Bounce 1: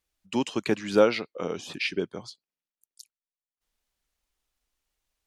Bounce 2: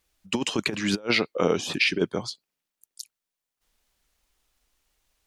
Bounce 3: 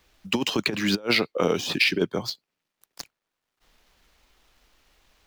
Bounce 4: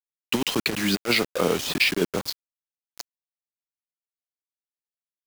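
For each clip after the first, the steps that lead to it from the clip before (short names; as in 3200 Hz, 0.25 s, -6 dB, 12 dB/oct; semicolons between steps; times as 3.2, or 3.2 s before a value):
negative-ratio compressor -28 dBFS, ratio -0.5; gain +5 dB
median filter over 5 samples; dynamic EQ 4500 Hz, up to +5 dB, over -39 dBFS, Q 1.4; three-band squash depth 40%; gain +1 dB
bit-crush 5-bit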